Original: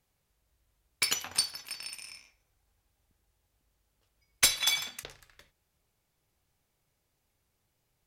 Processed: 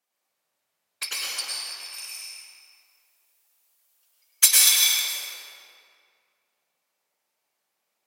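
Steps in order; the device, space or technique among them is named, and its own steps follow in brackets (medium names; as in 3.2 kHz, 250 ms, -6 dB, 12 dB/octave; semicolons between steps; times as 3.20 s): 1.94–5.05 s: RIAA curve recording; whispering ghost (whisper effect; high-pass 540 Hz 12 dB/octave; reverberation RT60 2.2 s, pre-delay 97 ms, DRR -5 dB); trim -3.5 dB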